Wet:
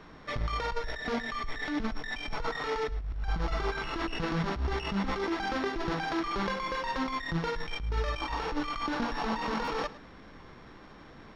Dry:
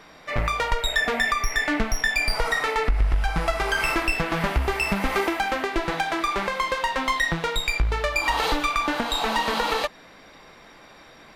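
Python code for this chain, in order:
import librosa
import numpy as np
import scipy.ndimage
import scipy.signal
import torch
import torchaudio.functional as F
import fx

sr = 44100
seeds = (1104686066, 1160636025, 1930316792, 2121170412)

p1 = np.r_[np.sort(x[:len(x) // 8 * 8].reshape(-1, 8), axis=1).ravel(), x[len(x) // 8 * 8:]]
p2 = fx.peak_eq(p1, sr, hz=640.0, db=-8.0, octaves=0.83)
p3 = fx.over_compress(p2, sr, threshold_db=-28.0, ratio=-1.0)
p4 = fx.dmg_noise_colour(p3, sr, seeds[0], colour='pink', level_db=-55.0)
p5 = fx.spacing_loss(p4, sr, db_at_10k=33)
p6 = p5 + fx.echo_single(p5, sr, ms=107, db=-17.5, dry=0)
y = fx.buffer_glitch(p6, sr, at_s=(9.64,), block=512, repeats=2)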